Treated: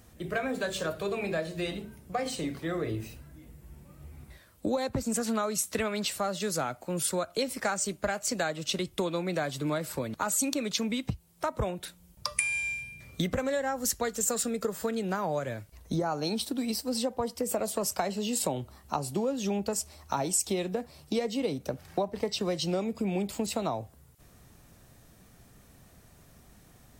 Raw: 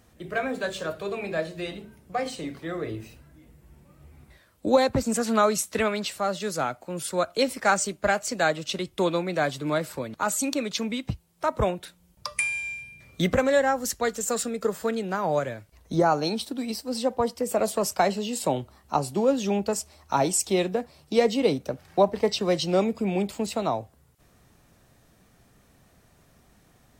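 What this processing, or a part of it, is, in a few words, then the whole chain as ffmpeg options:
ASMR close-microphone chain: -af "lowshelf=f=200:g=4.5,acompressor=threshold=-27dB:ratio=6,highshelf=f=6.5k:g=6.5"

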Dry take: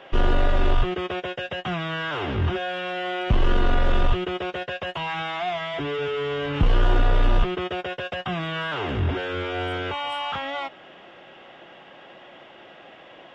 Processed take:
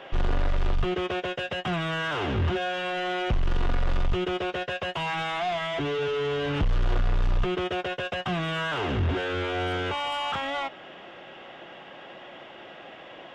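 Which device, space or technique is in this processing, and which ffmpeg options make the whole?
saturation between pre-emphasis and de-emphasis: -af "highshelf=f=2.1k:g=11,asoftclip=type=tanh:threshold=-21.5dB,highshelf=f=2.1k:g=-11,volume=2dB"

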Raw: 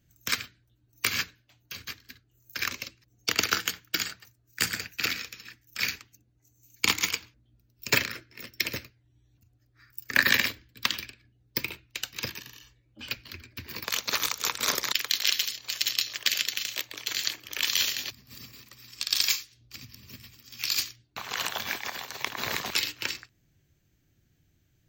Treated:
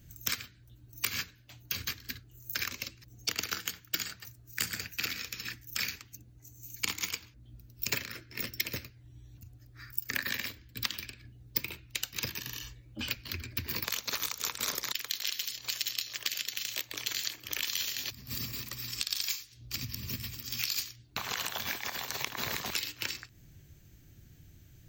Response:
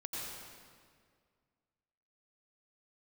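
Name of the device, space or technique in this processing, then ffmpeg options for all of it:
ASMR close-microphone chain: -af "lowshelf=f=170:g=7,acompressor=threshold=-42dB:ratio=5,highshelf=f=6.3k:g=6,volume=7.5dB"

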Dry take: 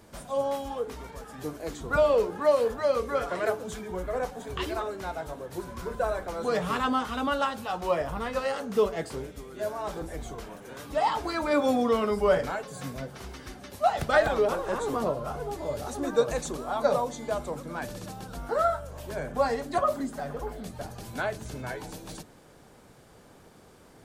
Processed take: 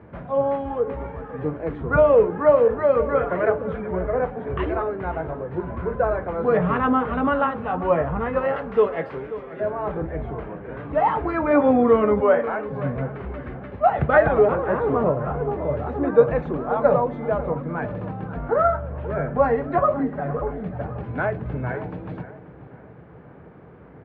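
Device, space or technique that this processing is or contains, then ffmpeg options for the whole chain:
bass cabinet: -filter_complex "[0:a]asettb=1/sr,asplit=3[a][b][c];[a]atrim=end=8.564[d];[b]atrim=start=8.56:end=9.6,asetpts=PTS-STARTPTS,afade=t=in:d=0.004:c=qsin,afade=t=out:st=1.036:d=0.004:c=qsin,aemphasis=mode=production:type=riaa[e];[c]atrim=start=9.596[f];[d][e]acrossfade=d=0.004:c1=hsin:c2=qsin[g];[g][f]acrossfade=d=0.004:c1=qsin:c2=hsin,asettb=1/sr,asplit=3[h][i][j];[h]atrim=end=12.204[k];[i]atrim=start=12.2:end=12.68,asetpts=PTS-STARTPTS,afade=t=in:d=0.004:c=qsin,afade=t=out:st=0.476:d=0.004:c=qsin,highpass=440[l];[j]atrim=start=12.676[m];[k][l]acrossfade=d=0.004:c1=hsin:c2=qsin[n];[n][m]acrossfade=d=0.004:c1=qsin:c2=hsin,bass=f=250:g=9,treble=f=4k:g=-7,highpass=f=66:w=0.5412,highpass=f=66:w=1.3066,equalizer=f=94:t=q:w=4:g=-7,equalizer=f=220:t=q:w=4:g=-4,equalizer=f=460:t=q:w=4:g=3,lowpass=f=2.2k:w=0.5412,lowpass=f=2.2k:w=1.3066,asplit=2[o][p];[p]adelay=535,lowpass=f=2.5k:p=1,volume=-14dB,asplit=2[q][r];[r]adelay=535,lowpass=f=2.5k:p=1,volume=0.38,asplit=2[s][t];[t]adelay=535,lowpass=f=2.5k:p=1,volume=0.38,asplit=2[u][v];[v]adelay=535,lowpass=f=2.5k:p=1,volume=0.38[w];[o][q][s][u][w]amix=inputs=5:normalize=0,volume=5.5dB"

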